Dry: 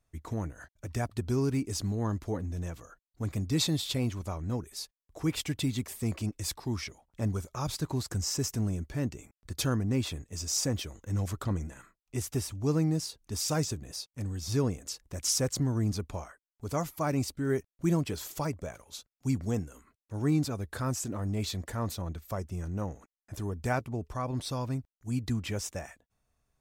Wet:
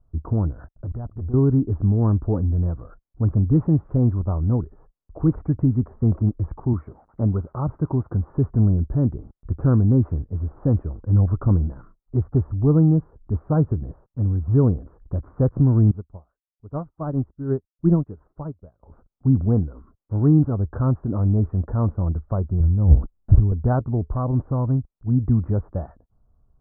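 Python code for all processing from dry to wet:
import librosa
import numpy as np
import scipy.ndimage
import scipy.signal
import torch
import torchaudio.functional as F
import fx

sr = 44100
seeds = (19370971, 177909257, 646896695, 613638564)

y = fx.chain(x, sr, fx.lowpass(hz=3800.0, slope=12),
    fx.level_steps(step_db=23),
    fx.leveller(passes=2), at=(0.71, 1.34))
y = fx.chain(y, sr, fx.crossing_spikes(level_db=-36.0),
    fx.highpass(hz=130.0, slope=6),
    fx.notch(hz=1700.0, q=20.0), at=(6.73, 8.3))
y = fx.chain(y, sr, fx.high_shelf(hz=5300.0, db=11.0),
    fx.upward_expand(threshold_db=-42.0, expansion=2.5), at=(15.91, 18.83))
y = fx.chain(y, sr, fx.riaa(side='playback'),
    fx.over_compress(threshold_db=-27.0, ratio=-0.5),
    fx.quant_float(bits=4), at=(22.6, 23.52))
y = scipy.signal.sosfilt(scipy.signal.butter(8, 1400.0, 'lowpass', fs=sr, output='sos'), y)
y = fx.tilt_eq(y, sr, slope=-3.0)
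y = F.gain(torch.from_numpy(y), 4.5).numpy()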